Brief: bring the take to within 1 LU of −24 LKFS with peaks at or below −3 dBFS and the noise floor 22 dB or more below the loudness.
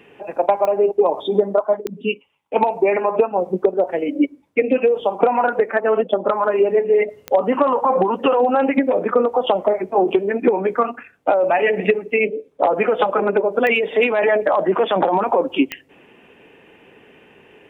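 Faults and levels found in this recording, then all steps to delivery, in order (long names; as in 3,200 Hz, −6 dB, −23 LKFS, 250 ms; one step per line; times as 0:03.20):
number of clicks 5; integrated loudness −18.5 LKFS; sample peak −1.5 dBFS; target loudness −24.0 LKFS
→ click removal
level −5.5 dB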